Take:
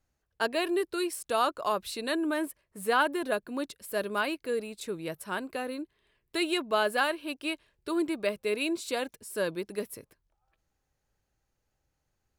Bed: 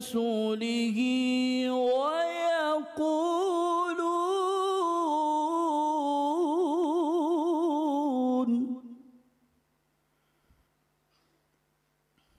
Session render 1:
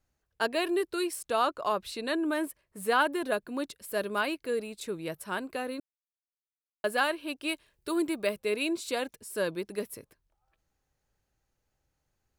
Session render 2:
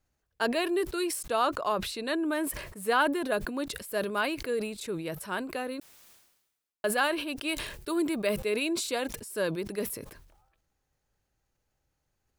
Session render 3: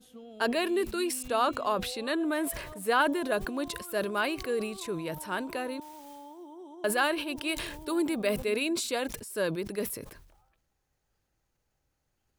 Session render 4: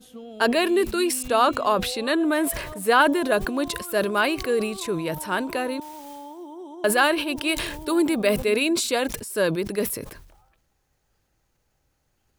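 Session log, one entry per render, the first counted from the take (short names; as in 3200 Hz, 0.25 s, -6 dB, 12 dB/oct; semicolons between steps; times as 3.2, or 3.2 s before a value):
1.26–2.26 high shelf 6800 Hz -7 dB; 5.8–6.84 mute; 7.48–8.38 high shelf 5700 Hz -> 11000 Hz +9 dB
sustainer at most 60 dB/s
add bed -19.5 dB
gain +7.5 dB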